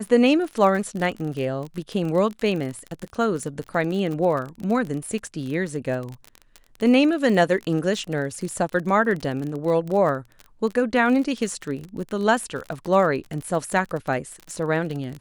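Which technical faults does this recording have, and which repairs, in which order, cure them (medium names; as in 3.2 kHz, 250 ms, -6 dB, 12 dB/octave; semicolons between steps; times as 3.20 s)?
crackle 35 per s -28 dBFS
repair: de-click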